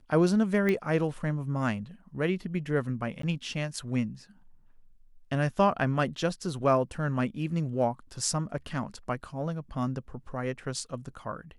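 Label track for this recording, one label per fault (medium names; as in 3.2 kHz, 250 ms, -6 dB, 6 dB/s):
0.690000	0.690000	pop -16 dBFS
3.220000	3.230000	dropout 13 ms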